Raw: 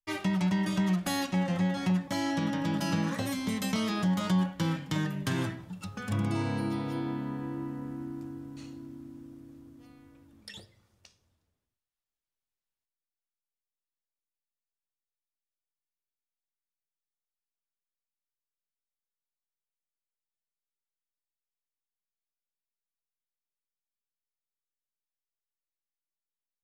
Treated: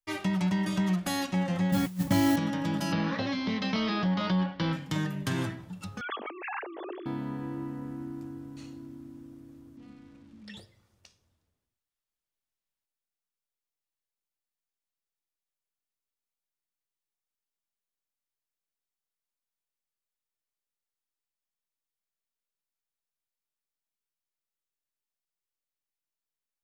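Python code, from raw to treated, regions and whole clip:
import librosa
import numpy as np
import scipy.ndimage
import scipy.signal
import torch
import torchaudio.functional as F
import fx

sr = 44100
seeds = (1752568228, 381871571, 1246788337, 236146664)

y = fx.chain(x, sr, fx.bass_treble(bass_db=12, treble_db=-4),
    fx.over_compress(threshold_db=-25.0, ratio=-0.5),
    fx.mod_noise(seeds[0], snr_db=17), at=(1.72, 2.36))
y = fx.chain(y, sr, fx.low_shelf(hz=120.0, db=-9.5),
    fx.leveller(passes=1),
    fx.steep_lowpass(hz=5200.0, slope=48), at=(2.92, 4.73))
y = fx.chain(y, sr, fx.sine_speech(),
    fx.highpass(hz=320.0, slope=24),
    fx.over_compress(threshold_db=-39.0, ratio=-1.0), at=(6.01, 7.06))
y = fx.chain(y, sr, fx.crossing_spikes(level_db=-47.5),
    fx.lowpass(hz=3600.0, slope=12),
    fx.peak_eq(hz=210.0, db=14.5, octaves=0.4), at=(9.77, 10.57))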